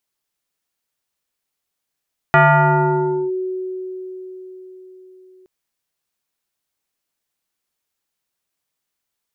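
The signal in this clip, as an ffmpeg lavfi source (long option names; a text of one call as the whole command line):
ffmpeg -f lavfi -i "aevalsrc='0.447*pow(10,-3*t/4.84)*sin(2*PI*372*t+2.9*clip(1-t/0.97,0,1)*sin(2*PI*1.4*372*t))':duration=3.12:sample_rate=44100" out.wav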